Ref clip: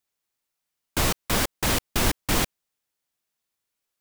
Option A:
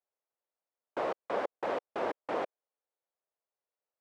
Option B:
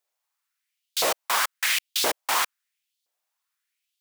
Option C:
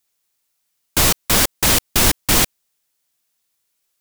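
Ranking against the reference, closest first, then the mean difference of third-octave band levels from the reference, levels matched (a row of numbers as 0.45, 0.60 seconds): C, B, A; 2.5, 11.0, 15.0 decibels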